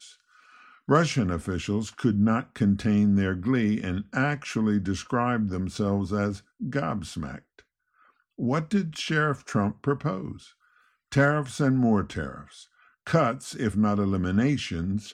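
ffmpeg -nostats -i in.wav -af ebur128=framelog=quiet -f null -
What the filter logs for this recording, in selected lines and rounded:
Integrated loudness:
  I:         -26.1 LUFS
  Threshold: -37.0 LUFS
Loudness range:
  LRA:         4.9 LU
  Threshold: -47.1 LUFS
  LRA low:   -30.0 LUFS
  LRA high:  -25.1 LUFS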